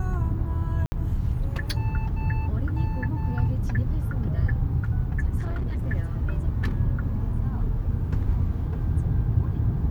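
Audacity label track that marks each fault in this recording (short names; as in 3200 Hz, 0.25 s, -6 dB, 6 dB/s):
0.860000	0.920000	gap 60 ms
5.400000	5.880000	clipped -24 dBFS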